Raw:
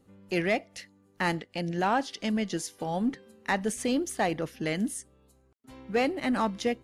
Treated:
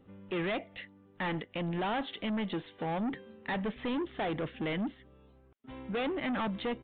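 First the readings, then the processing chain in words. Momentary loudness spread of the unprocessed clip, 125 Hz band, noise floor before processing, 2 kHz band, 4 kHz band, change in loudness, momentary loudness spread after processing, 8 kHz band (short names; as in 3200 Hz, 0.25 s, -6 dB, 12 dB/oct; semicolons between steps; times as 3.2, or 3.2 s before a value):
6 LU, -2.5 dB, -64 dBFS, -5.5 dB, -3.5 dB, -5.0 dB, 7 LU, under -40 dB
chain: soft clip -33 dBFS, distortion -6 dB; downsampling 8000 Hz; gain +3 dB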